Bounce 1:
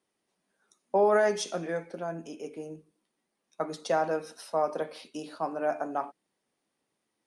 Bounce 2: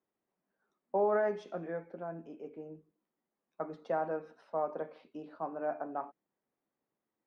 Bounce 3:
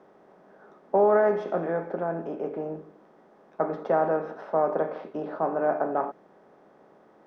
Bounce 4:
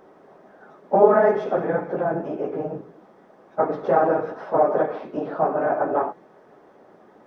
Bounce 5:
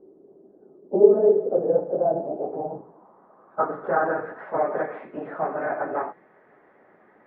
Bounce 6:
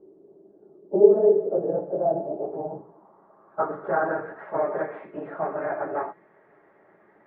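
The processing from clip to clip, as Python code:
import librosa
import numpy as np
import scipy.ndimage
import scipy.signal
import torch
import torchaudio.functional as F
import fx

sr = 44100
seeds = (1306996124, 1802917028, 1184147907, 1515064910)

y1 = scipy.signal.sosfilt(scipy.signal.butter(2, 1600.0, 'lowpass', fs=sr, output='sos'), x)
y1 = y1 * librosa.db_to_amplitude(-6.0)
y2 = fx.bin_compress(y1, sr, power=0.6)
y2 = fx.high_shelf(y2, sr, hz=3100.0, db=-12.0)
y2 = y2 * librosa.db_to_amplitude(8.0)
y3 = fx.phase_scramble(y2, sr, seeds[0], window_ms=50)
y3 = y3 * librosa.db_to_amplitude(5.0)
y4 = fx.filter_sweep_lowpass(y3, sr, from_hz=370.0, to_hz=2000.0, start_s=1.0, end_s=4.5, q=3.7)
y4 = y4 * librosa.db_to_amplitude(-6.5)
y5 = fx.air_absorb(y4, sr, metres=86.0)
y5 = fx.notch_comb(y5, sr, f0_hz=250.0)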